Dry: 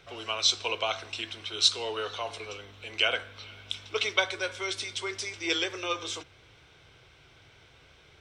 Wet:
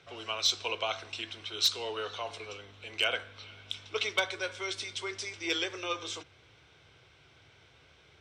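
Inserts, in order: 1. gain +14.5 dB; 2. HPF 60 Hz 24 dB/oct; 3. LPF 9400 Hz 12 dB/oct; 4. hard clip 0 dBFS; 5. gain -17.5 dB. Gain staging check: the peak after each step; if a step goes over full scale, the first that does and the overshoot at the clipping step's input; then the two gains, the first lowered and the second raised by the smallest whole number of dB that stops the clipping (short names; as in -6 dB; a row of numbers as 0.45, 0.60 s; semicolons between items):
+7.5, +7.0, +7.0, 0.0, -17.5 dBFS; step 1, 7.0 dB; step 1 +7.5 dB, step 5 -10.5 dB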